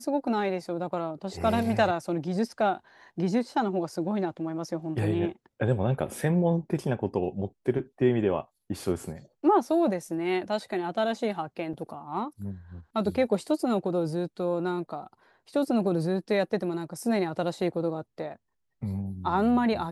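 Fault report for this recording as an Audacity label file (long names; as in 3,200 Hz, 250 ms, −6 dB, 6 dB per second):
11.730000	11.730000	drop-out 4.9 ms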